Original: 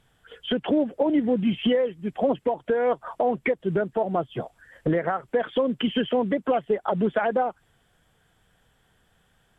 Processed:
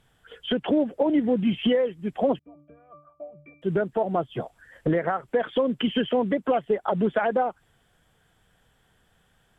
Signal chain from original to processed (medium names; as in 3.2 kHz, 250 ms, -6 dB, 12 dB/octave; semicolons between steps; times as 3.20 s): 2.39–3.62 s: pitch-class resonator D, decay 0.41 s